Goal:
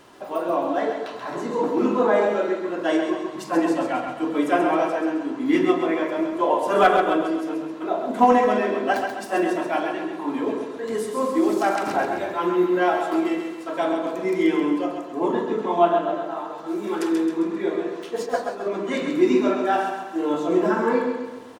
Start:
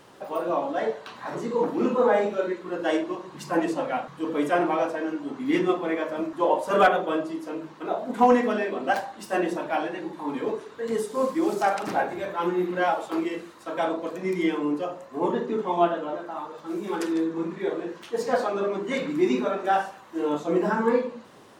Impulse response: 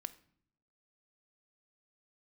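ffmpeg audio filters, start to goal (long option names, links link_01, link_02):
-filter_complex "[0:a]asplit=3[link_01][link_02][link_03];[link_01]afade=type=out:start_time=18.25:duration=0.02[link_04];[link_02]agate=range=-33dB:threshold=-18dB:ratio=3:detection=peak,afade=type=in:start_time=18.25:duration=0.02,afade=type=out:start_time=18.65:duration=0.02[link_05];[link_03]afade=type=in:start_time=18.65:duration=0.02[link_06];[link_04][link_05][link_06]amix=inputs=3:normalize=0,aecho=1:1:133|266|399|532|665|798:0.501|0.236|0.111|0.052|0.0245|0.0115[link_07];[1:a]atrim=start_sample=2205[link_08];[link_07][link_08]afir=irnorm=-1:irlink=0,volume=5dB"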